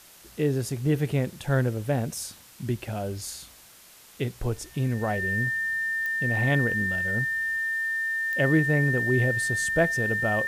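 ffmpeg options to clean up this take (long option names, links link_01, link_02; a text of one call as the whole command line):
ffmpeg -i in.wav -af "adeclick=threshold=4,bandreject=frequency=1800:width=30,afwtdn=0.0032" out.wav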